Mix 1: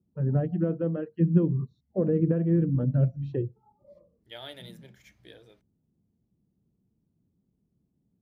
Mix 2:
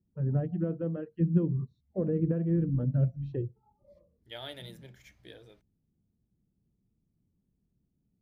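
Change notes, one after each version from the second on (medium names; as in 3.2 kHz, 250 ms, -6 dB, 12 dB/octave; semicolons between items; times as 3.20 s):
first voice -5.5 dB; master: remove high-pass 120 Hz 6 dB/octave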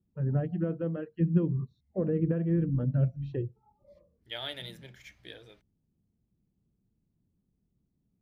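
master: add peaking EQ 2.6 kHz +6.5 dB 2.6 oct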